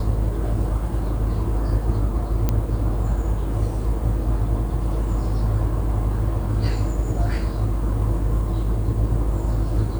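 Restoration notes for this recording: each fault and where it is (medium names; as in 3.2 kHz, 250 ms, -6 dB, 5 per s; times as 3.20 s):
2.49 s: pop -8 dBFS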